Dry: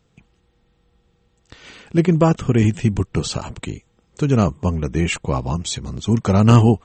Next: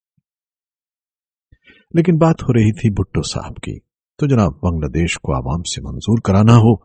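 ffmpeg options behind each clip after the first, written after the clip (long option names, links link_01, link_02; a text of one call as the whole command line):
ffmpeg -i in.wav -af "agate=range=-33dB:threshold=-39dB:ratio=3:detection=peak,afftdn=noise_reduction=32:noise_floor=-40,volume=2.5dB" out.wav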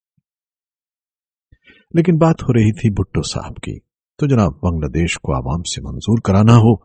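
ffmpeg -i in.wav -af anull out.wav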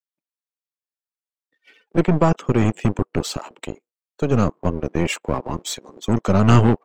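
ffmpeg -i in.wav -filter_complex "[0:a]aeval=exprs='if(lt(val(0),0),0.447*val(0),val(0))':channel_layout=same,acrossover=split=350|1000|2200[link_01][link_02][link_03][link_04];[link_01]acrusher=bits=2:mix=0:aa=0.5[link_05];[link_05][link_02][link_03][link_04]amix=inputs=4:normalize=0,volume=-2dB" out.wav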